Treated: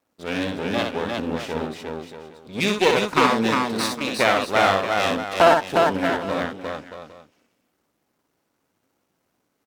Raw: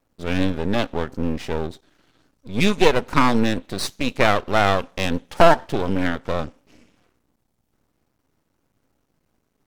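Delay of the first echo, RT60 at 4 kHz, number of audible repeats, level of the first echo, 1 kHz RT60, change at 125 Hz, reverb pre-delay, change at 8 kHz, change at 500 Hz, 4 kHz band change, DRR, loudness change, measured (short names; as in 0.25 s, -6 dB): 62 ms, none, 4, -4.5 dB, none, -6.5 dB, none, +2.0 dB, +0.5 dB, +2.0 dB, none, 0.0 dB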